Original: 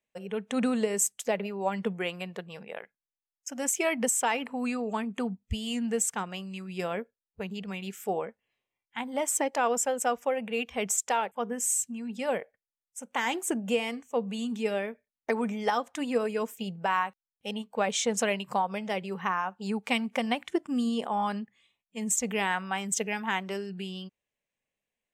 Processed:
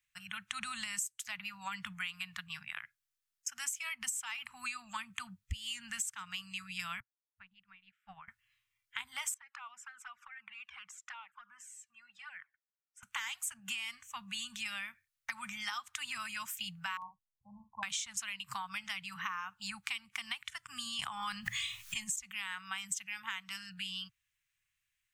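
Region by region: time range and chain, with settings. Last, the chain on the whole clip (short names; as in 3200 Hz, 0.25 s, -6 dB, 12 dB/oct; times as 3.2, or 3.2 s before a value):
7–8.28 HPF 210 Hz 6 dB/oct + air absorption 430 m + upward expander 2.5:1, over -45 dBFS
9.34–13.03 compressor 2.5:1, threshold -37 dBFS + band-pass 1100 Hz, Q 1.1 + envelope flanger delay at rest 2.3 ms, full sweep at -35.5 dBFS
16.97–17.83 brick-wall FIR low-pass 1100 Hz + doubler 49 ms -9 dB
20.99–22.16 bell 6500 Hz +3 dB 0.28 oct + fast leveller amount 100%
whole clip: Chebyshev band-stop 120–1300 Hz, order 3; dynamic EQ 1600 Hz, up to -7 dB, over -48 dBFS, Q 1.9; compressor 10:1, threshold -41 dBFS; gain +6 dB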